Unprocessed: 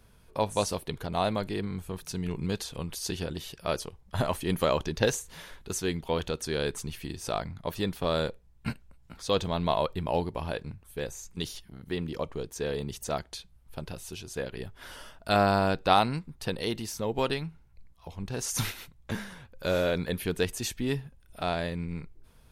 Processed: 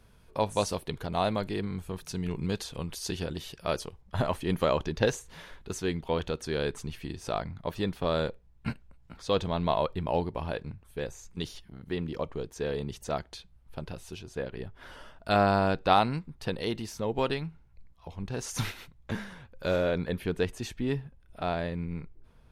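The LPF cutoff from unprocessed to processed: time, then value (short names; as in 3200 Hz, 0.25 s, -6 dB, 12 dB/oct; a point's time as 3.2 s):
LPF 6 dB/oct
7500 Hz
from 4.02 s 3500 Hz
from 14.19 s 2000 Hz
from 15.16 s 3800 Hz
from 19.76 s 2100 Hz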